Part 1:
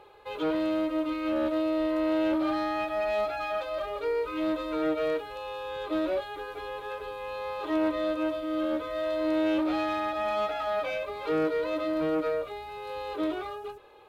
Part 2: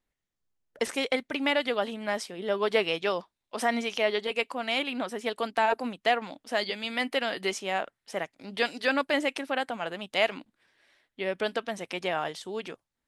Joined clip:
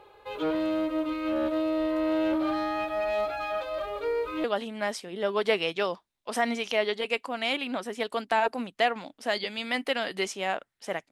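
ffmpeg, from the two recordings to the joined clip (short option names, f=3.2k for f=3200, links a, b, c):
-filter_complex "[0:a]apad=whole_dur=11.11,atrim=end=11.11,atrim=end=4.442[a];[1:a]atrim=start=1.698:end=8.37[b];[a][b]acrossfade=d=0.004:c1=hsin:c2=hsin"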